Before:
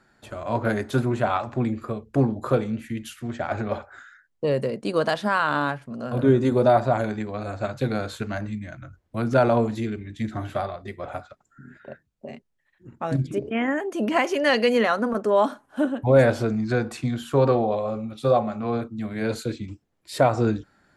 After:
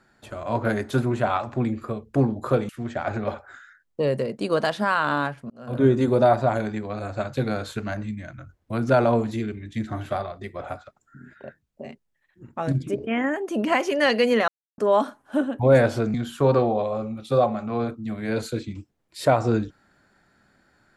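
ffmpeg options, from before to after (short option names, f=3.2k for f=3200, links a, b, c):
-filter_complex "[0:a]asplit=6[a][b][c][d][e][f];[a]atrim=end=2.692[g];[b]atrim=start=3.128:end=5.94,asetpts=PTS-STARTPTS,afade=t=out:st=2.808:d=0.004:c=hsin[h];[c]atrim=start=5.94:end=14.92,asetpts=PTS-STARTPTS,afade=t=in:d=0.36,afade=t=out:st=8.976:d=0.004:c=hsin[i];[d]atrim=start=14.92:end=15.22,asetpts=PTS-STARTPTS,volume=0[j];[e]atrim=start=15.22:end=16.582,asetpts=PTS-STARTPTS,afade=t=in:d=0.004:c=hsin[k];[f]atrim=start=17.068[l];[h][i][j][k]concat=n=4:v=0:a=1[m];[g][m]acrossfade=d=0.004:c1=hsin:c2=hsin[n];[n][l]acrossfade=d=0.004:c1=hsin:c2=hsin"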